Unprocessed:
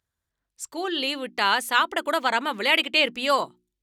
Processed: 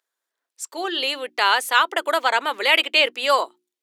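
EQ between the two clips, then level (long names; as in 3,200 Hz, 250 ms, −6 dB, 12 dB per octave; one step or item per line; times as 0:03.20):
high-pass filter 370 Hz 24 dB per octave
+3.5 dB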